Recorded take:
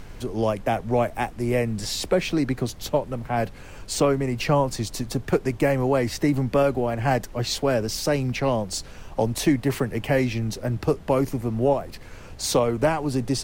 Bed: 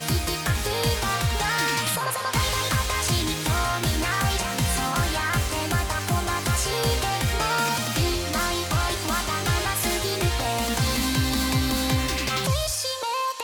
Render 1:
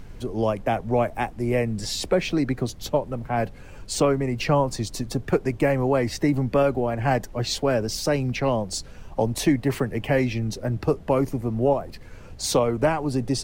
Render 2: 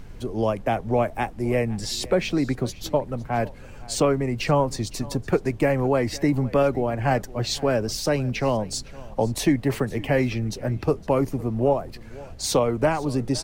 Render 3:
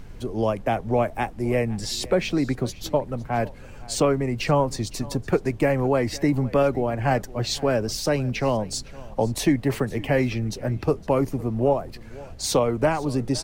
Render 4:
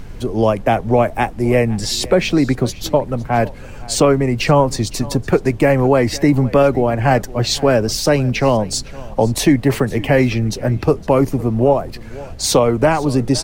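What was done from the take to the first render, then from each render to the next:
broadband denoise 6 dB, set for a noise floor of −42 dBFS
single-tap delay 511 ms −20.5 dB
no processing that can be heard
level +8.5 dB; brickwall limiter −3 dBFS, peak gain reduction 2 dB

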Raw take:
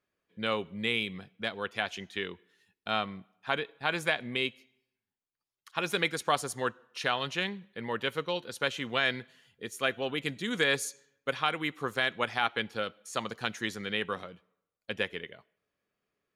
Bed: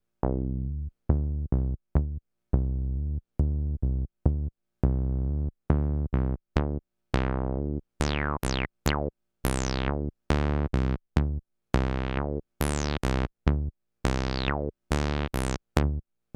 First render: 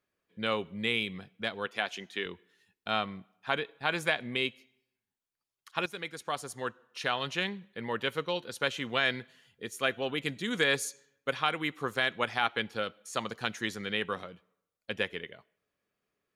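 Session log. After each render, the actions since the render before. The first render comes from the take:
0:01.66–0:02.26: high-pass filter 200 Hz
0:05.86–0:07.37: fade in, from −13 dB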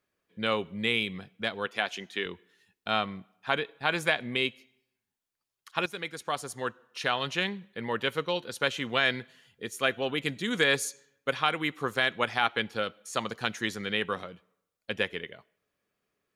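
level +2.5 dB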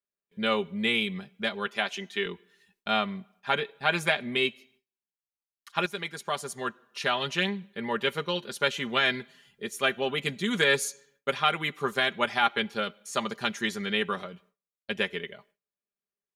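noise gate with hold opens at −58 dBFS
comb filter 5 ms, depth 67%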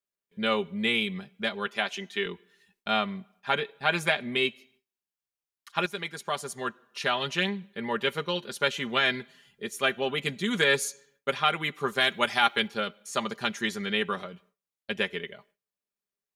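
0:12.00–0:12.68: high-shelf EQ 4,100 Hz +9.5 dB

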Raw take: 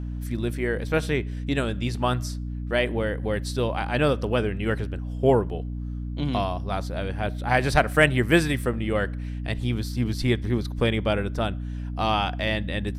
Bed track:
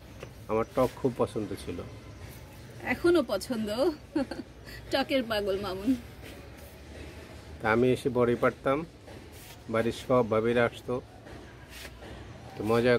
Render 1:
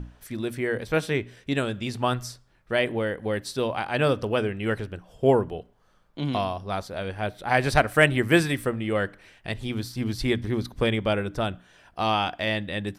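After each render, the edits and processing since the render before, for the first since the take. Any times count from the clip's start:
mains-hum notches 60/120/180/240/300 Hz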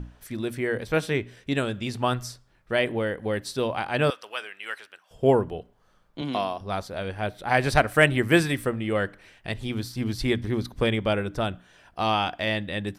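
0:04.10–0:05.11: high-pass filter 1,300 Hz
0:06.21–0:06.61: high-pass filter 210 Hz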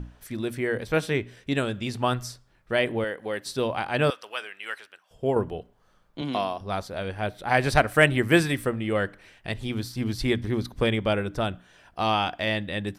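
0:03.04–0:03.46: high-pass filter 470 Hz 6 dB per octave
0:04.70–0:05.36: fade out, to −7 dB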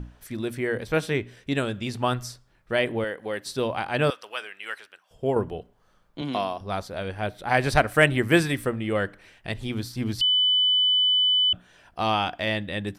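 0:10.21–0:11.53: beep over 3,000 Hz −17.5 dBFS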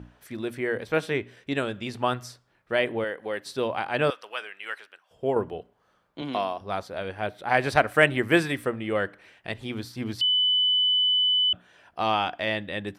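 high-pass filter 66 Hz
bass and treble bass −6 dB, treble −6 dB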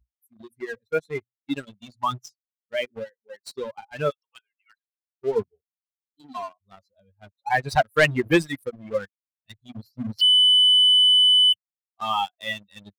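spectral dynamics exaggerated over time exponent 3
leveller curve on the samples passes 2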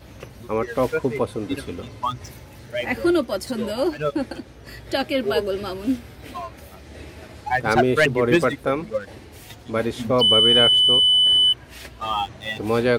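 mix in bed track +4.5 dB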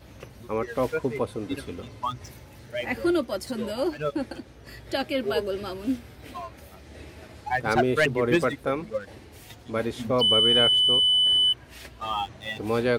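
level −4.5 dB

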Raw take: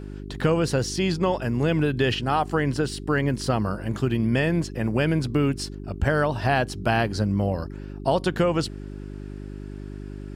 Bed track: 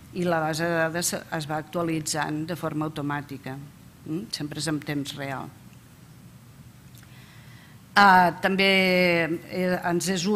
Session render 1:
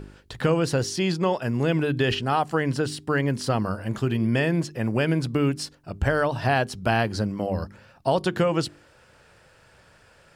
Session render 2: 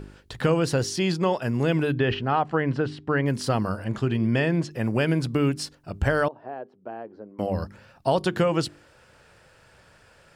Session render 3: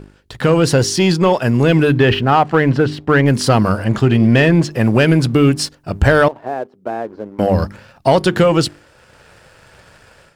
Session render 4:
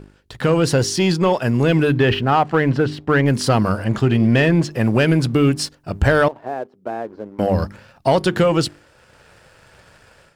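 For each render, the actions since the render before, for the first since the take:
hum removal 50 Hz, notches 8
0:01.94–0:03.26: low-pass filter 2,600 Hz; 0:03.84–0:04.71: high-frequency loss of the air 55 metres; 0:06.28–0:07.39: four-pole ladder band-pass 490 Hz, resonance 25%
automatic gain control gain up to 10 dB; leveller curve on the samples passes 1
level −3.5 dB

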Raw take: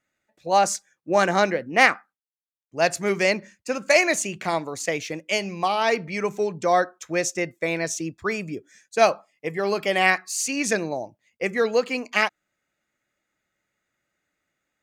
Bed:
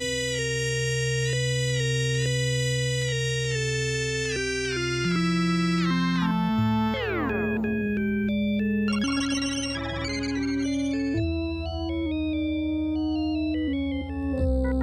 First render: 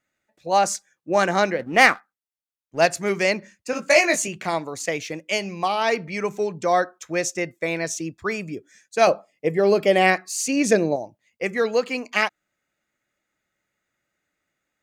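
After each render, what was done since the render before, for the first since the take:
0:01.59–0:02.86: leveller curve on the samples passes 1
0:03.71–0:04.28: double-tracking delay 18 ms −3.5 dB
0:09.07–0:10.96: low shelf with overshoot 750 Hz +6 dB, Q 1.5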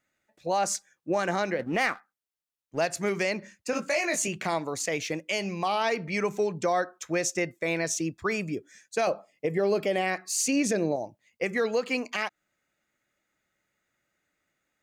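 downward compressor 3 to 1, threshold −22 dBFS, peak gain reduction 10 dB
brickwall limiter −17 dBFS, peak gain reduction 9 dB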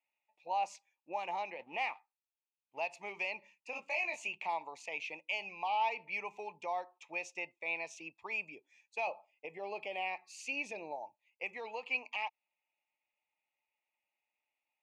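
pair of resonant band-passes 1,500 Hz, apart 1.5 octaves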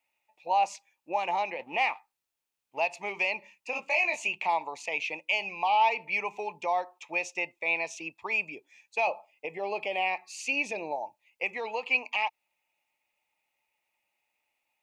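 level +9 dB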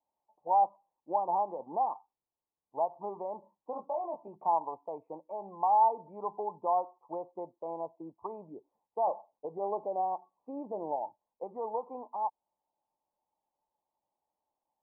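Chebyshev low-pass filter 1,100 Hz, order 6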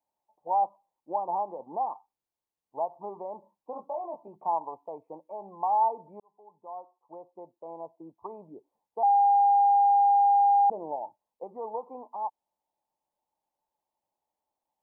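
0:06.20–0:08.40: fade in
0:09.03–0:10.70: beep over 806 Hz −17.5 dBFS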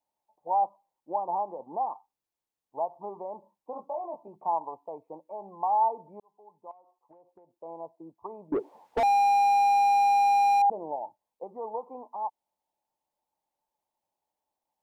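0:06.71–0:07.53: downward compressor 16 to 1, threshold −52 dBFS
0:08.52–0:10.62: mid-hump overdrive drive 38 dB, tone 1,100 Hz, clips at −17 dBFS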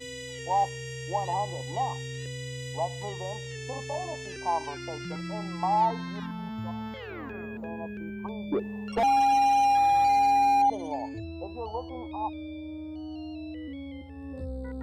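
mix in bed −12 dB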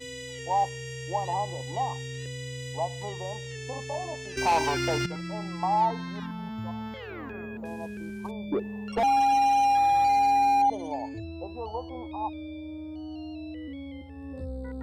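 0:04.37–0:05.06: leveller curve on the samples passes 3
0:07.65–0:08.31: variable-slope delta modulation 64 kbit/s

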